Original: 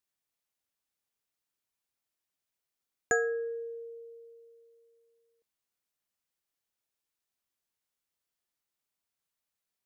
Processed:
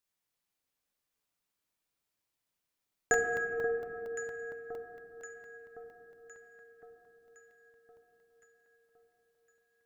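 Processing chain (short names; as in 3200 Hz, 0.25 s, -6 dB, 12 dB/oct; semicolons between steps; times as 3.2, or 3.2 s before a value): on a send: echo with dull and thin repeats by turns 0.531 s, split 1300 Hz, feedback 70%, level -8.5 dB; on the sum: shoebox room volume 150 m³, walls hard, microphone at 0.39 m; crackling interface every 0.23 s, samples 64, zero, from 0.84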